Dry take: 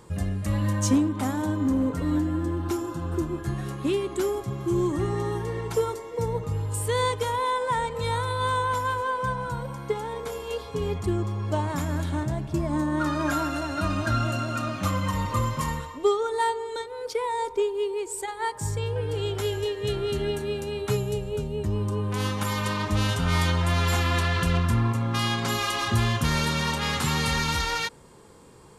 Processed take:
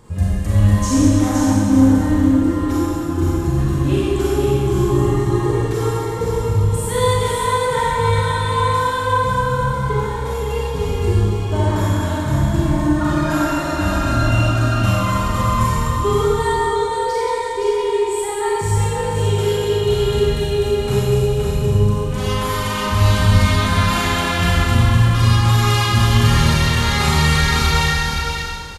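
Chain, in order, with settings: low shelf 120 Hz +10 dB; echo 0.517 s -4.5 dB; Schroeder reverb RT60 2 s, combs from 30 ms, DRR -7 dB; gain -1 dB

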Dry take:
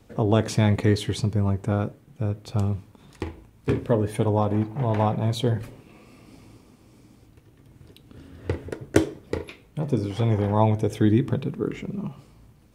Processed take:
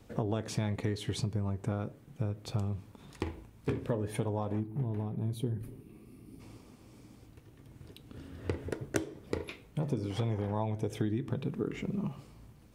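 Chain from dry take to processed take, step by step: compressor 6:1, threshold -27 dBFS, peak gain reduction 14.5 dB; spectral gain 4.6–6.4, 450–8800 Hz -12 dB; gain -2 dB

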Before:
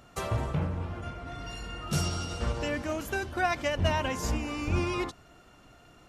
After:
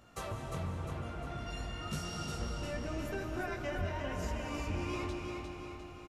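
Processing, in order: 2.37–4.27 tilt -1.5 dB/oct; compressor, threshold -31 dBFS, peak gain reduction 13 dB; chorus 0.94 Hz, delay 17.5 ms, depth 5.1 ms; feedback echo 0.353 s, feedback 50%, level -5.5 dB; digital reverb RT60 3.3 s, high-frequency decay 0.7×, pre-delay 0.115 s, DRR 5 dB; gain -2 dB

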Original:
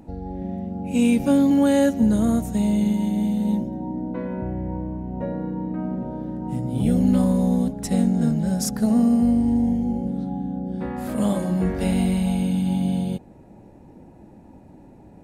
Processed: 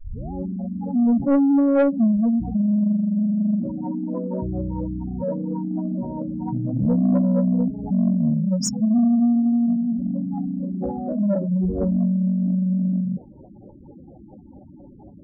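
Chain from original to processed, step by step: tape start at the beginning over 0.32 s; in parallel at -11 dB: wrapped overs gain 9.5 dB; on the sum: LFO low-pass sine 4.3 Hz 570–8000 Hz; spectral gate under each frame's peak -10 dB strong; soft clip -12 dBFS, distortion -17 dB

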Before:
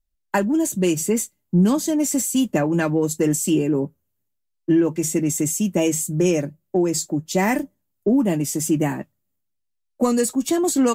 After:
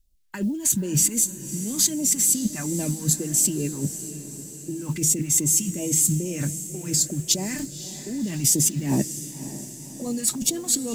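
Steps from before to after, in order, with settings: negative-ratio compressor -27 dBFS, ratio -1; modulation noise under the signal 32 dB; phaser stages 2, 2.6 Hz, lowest notch 450–1500 Hz; diffused feedback echo 0.557 s, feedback 56%, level -12.5 dB; gain +3 dB

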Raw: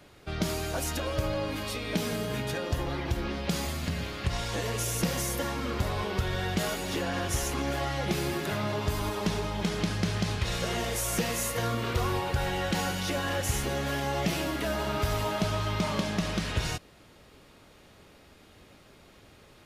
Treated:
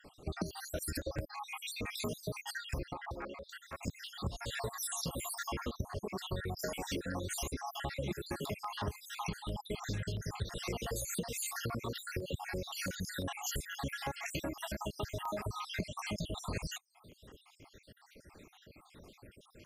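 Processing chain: random spectral dropouts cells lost 69%; reverb removal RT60 0.7 s; 2.93–3.83 three-band isolator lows -18 dB, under 540 Hz, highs -19 dB, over 2100 Hz; compressor 12:1, threshold -36 dBFS, peak gain reduction 14 dB; LFO notch saw down 5.9 Hz 550–5400 Hz; gain +2.5 dB

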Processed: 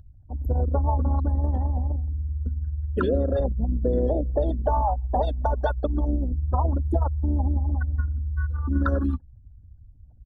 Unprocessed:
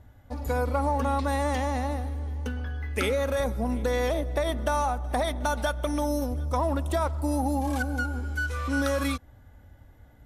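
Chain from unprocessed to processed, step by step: formant sharpening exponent 3; harmoniser -5 st -10 dB, +4 st -17 dB; Butterworth band-stop 2200 Hz, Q 2.1; gain +3.5 dB

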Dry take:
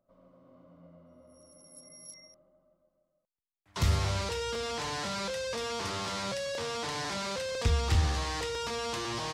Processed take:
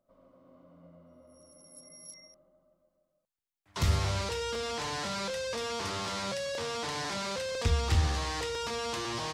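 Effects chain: notches 60/120/180 Hz

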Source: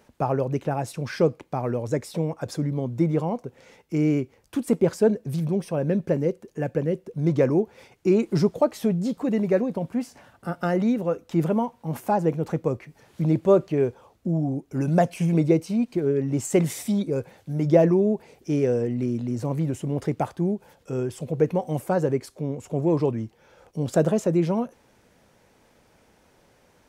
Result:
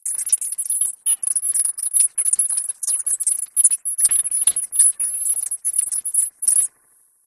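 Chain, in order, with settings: low-pass opened by the level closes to 590 Hz, open at -18 dBFS; inverted band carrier 3100 Hz; doubler 32 ms -12 dB; analogue delay 0.292 s, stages 1024, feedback 71%, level -12 dB; rotary speaker horn 0.65 Hz; wide varispeed 3.7×; gain +6 dB

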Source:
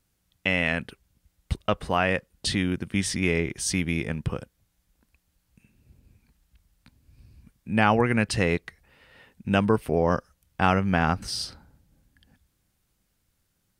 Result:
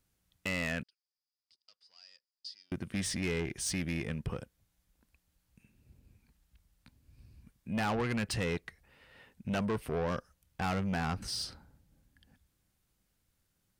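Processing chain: soft clip -23.5 dBFS, distortion -8 dB; 0.83–2.72 band-pass 4900 Hz, Q 15; gain -4.5 dB

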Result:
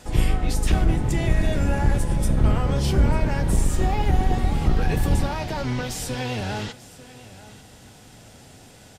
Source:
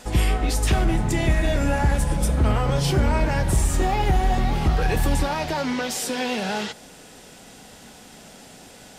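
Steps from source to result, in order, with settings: octaver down 1 oct, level +4 dB; echo 0.893 s -18 dB; gain -4 dB

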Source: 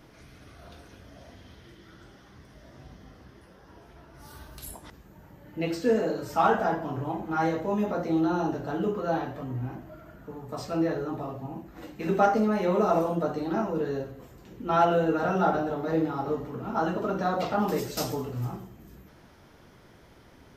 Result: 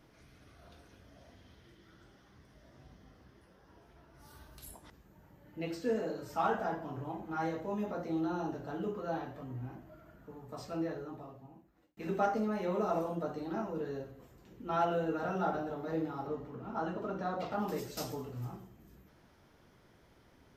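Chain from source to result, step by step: 10.74–11.97 fade out; 16.27–17.52 high shelf 5600 Hz -8 dB; gain -9 dB

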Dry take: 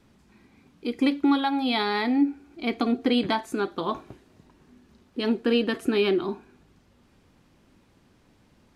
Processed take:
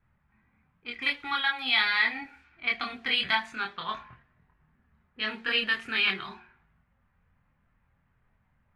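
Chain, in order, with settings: de-hum 45.51 Hz, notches 24; low-pass opened by the level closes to 760 Hz, open at -21.5 dBFS; EQ curve 150 Hz 0 dB, 320 Hz -19 dB, 1900 Hz +15 dB, 6300 Hz +3 dB; chorus voices 4, 0.25 Hz, delay 25 ms, depth 2.8 ms; gain -2.5 dB

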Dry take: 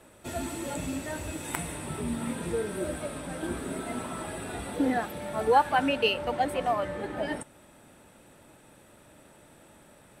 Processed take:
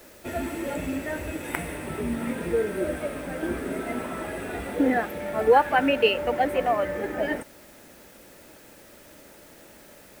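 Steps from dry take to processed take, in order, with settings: graphic EQ 125/500/1000/2000/4000/8000 Hz -7/+3/-5/+5/-7/-10 dB; in parallel at -7.5 dB: requantised 8-bit, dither triangular; on the sum: gain +1.5 dB

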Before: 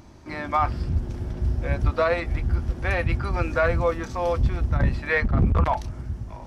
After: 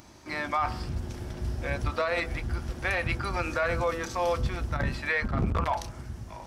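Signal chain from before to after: tilt +2 dB/oct; de-hum 82.88 Hz, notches 19; limiter -18 dBFS, peak gain reduction 7.5 dB

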